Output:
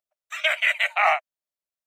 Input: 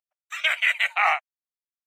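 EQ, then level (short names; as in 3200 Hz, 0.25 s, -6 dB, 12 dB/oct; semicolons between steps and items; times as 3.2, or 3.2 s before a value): bell 610 Hz +11 dB 0.36 oct; 0.0 dB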